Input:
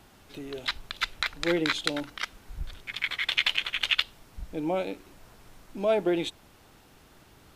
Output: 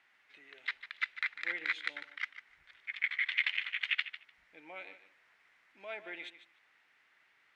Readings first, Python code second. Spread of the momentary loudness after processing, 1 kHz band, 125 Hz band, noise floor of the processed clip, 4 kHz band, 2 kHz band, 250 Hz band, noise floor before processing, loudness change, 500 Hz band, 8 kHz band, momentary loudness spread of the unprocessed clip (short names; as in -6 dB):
18 LU, -14.0 dB, under -30 dB, -70 dBFS, -12.5 dB, -3.0 dB, -27.5 dB, -57 dBFS, -7.0 dB, -22.5 dB, under -20 dB, 18 LU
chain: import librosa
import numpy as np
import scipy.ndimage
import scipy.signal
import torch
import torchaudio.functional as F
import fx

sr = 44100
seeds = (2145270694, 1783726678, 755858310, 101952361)

y = fx.bandpass_q(x, sr, hz=2000.0, q=4.1)
y = fx.echo_feedback(y, sr, ms=149, feedback_pct=16, wet_db=-13.0)